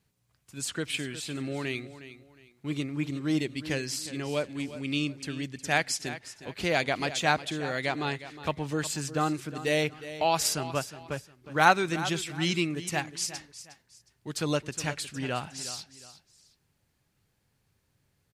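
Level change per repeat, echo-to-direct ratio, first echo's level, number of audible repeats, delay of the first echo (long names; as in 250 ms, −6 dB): −10.5 dB, −13.5 dB, −14.0 dB, 2, 361 ms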